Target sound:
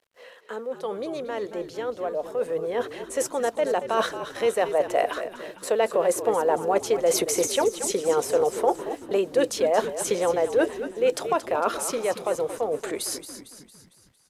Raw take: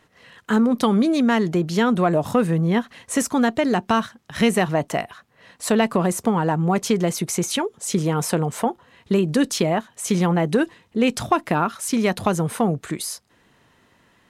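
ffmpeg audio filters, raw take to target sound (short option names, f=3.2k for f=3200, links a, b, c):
-filter_complex "[0:a]highpass=f=510:t=q:w=4.9,areverse,acompressor=threshold=-29dB:ratio=6,areverse,agate=range=-16dB:threshold=-50dB:ratio=16:detection=peak,acrusher=bits=10:mix=0:aa=0.000001,dynaudnorm=f=570:g=11:m=9.5dB,asplit=2[a][b];[b]asplit=6[c][d][e][f][g][h];[c]adelay=227,afreqshift=-55,volume=-11dB[i];[d]adelay=454,afreqshift=-110,volume=-16.7dB[j];[e]adelay=681,afreqshift=-165,volume=-22.4dB[k];[f]adelay=908,afreqshift=-220,volume=-28dB[l];[g]adelay=1135,afreqshift=-275,volume=-33.7dB[m];[h]adelay=1362,afreqshift=-330,volume=-39.4dB[n];[i][j][k][l][m][n]amix=inputs=6:normalize=0[o];[a][o]amix=inputs=2:normalize=0,aresample=32000,aresample=44100,volume=-1dB"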